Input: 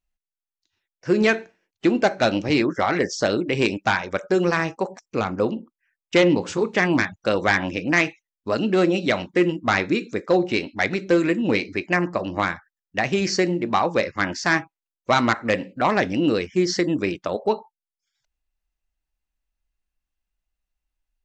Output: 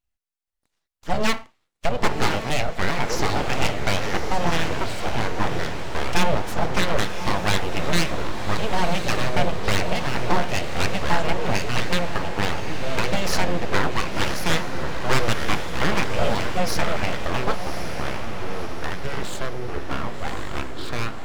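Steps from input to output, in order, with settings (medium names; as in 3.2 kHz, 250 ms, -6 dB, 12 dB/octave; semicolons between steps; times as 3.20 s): ever faster or slower copies 477 ms, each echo -6 st, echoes 2, each echo -6 dB; full-wave rectifier; echo that smears into a reverb 1099 ms, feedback 50%, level -7.5 dB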